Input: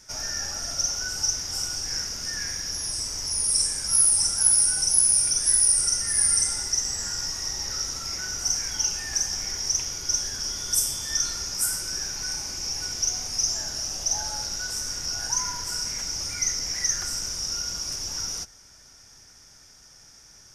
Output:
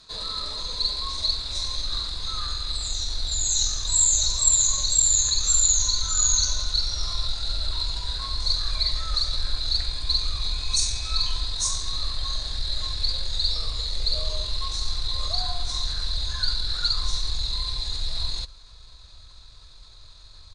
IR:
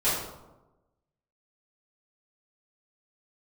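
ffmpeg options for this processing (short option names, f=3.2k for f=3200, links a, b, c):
-af "asubboost=boost=8:cutoff=100,asetrate=32097,aresample=44100,atempo=1.37395"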